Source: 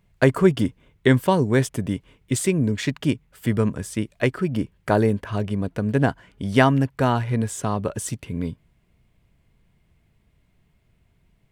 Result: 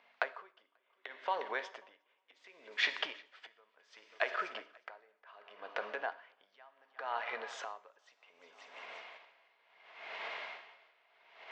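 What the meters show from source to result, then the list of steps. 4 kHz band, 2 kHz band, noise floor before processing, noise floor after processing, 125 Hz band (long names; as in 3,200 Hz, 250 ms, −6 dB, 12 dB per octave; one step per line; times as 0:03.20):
−7.5 dB, −9.5 dB, −64 dBFS, −76 dBFS, below −40 dB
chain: camcorder AGC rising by 29 dB per second
Bessel low-pass filter 2,900 Hz, order 8
downward compressor 6 to 1, threshold −32 dBFS, peak gain reduction 20 dB
reverb whose tail is shaped and stops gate 320 ms falling, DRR 10 dB
mains hum 50 Hz, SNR 15 dB
high-pass filter 660 Hz 24 dB per octave
echo machine with several playback heads 179 ms, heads second and third, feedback 46%, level −19 dB
tremolo with a sine in dB 0.68 Hz, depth 29 dB
level +9 dB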